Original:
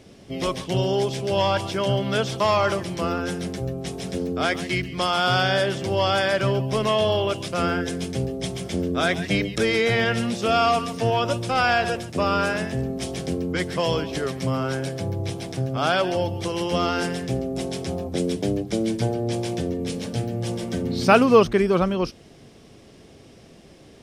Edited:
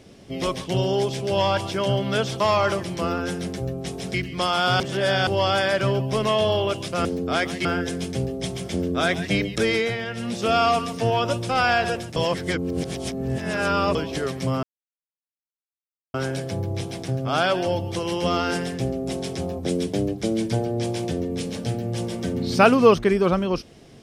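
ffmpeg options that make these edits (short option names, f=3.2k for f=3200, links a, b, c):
-filter_complex "[0:a]asplit=11[a][b][c][d][e][f][g][h][i][j][k];[a]atrim=end=4.142[l];[b]atrim=start=4.738:end=5.402[m];[c]atrim=start=5.398:end=5.872,asetpts=PTS-STARTPTS,areverse[n];[d]atrim=start=5.868:end=7.652[o];[e]atrim=start=4.138:end=4.742[p];[f]atrim=start=7.648:end=9.98,asetpts=PTS-STARTPTS,afade=t=out:st=2.082:d=0.25:silence=0.375837[q];[g]atrim=start=9.98:end=10.15,asetpts=PTS-STARTPTS,volume=-8.5dB[r];[h]atrim=start=10.15:end=12.162,asetpts=PTS-STARTPTS,afade=t=in:d=0.25:silence=0.375837[s];[i]atrim=start=12.158:end=13.952,asetpts=PTS-STARTPTS,areverse[t];[j]atrim=start=13.948:end=14.63,asetpts=PTS-STARTPTS,afade=t=out:st=0.678:d=0.004:c=hsin,apad=pad_dur=1.51[u];[k]atrim=start=14.63,asetpts=PTS-STARTPTS,afade=t=in:d=0.004:c=hsin[v];[l][m]acrossfade=d=0.004:c1=hsin:c2=hsin[w];[w][n]acrossfade=d=0.004:c1=hsin:c2=hsin[x];[x][o]acrossfade=d=0.004:c1=hsin:c2=hsin[y];[y][p]acrossfade=d=0.004:c1=hsin:c2=hsin[z];[q][r][s]concat=n=3:v=0:a=1[aa];[z][aa]acrossfade=d=0.004:c1=hsin:c2=hsin[ab];[ab][t]acrossfade=d=0.004:c1=hsin:c2=hsin[ac];[u][v]concat=n=2:v=0:a=1[ad];[ac][ad]acrossfade=d=0.004:c1=hsin:c2=hsin"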